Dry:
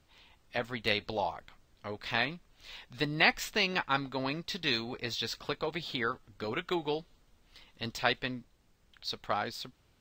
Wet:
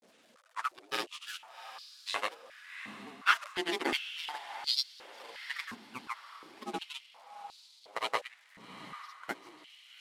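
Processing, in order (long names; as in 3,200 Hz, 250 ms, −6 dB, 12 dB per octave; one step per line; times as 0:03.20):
linear delta modulator 64 kbit/s, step −32.5 dBFS
noise gate −30 dBFS, range −22 dB
ring modulation 570 Hz
granular cloud, pitch spread up and down by 3 semitones
feedback delay with all-pass diffusion 757 ms, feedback 48%, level −12.5 dB
high-pass on a step sequencer 2.8 Hz 220–4,400 Hz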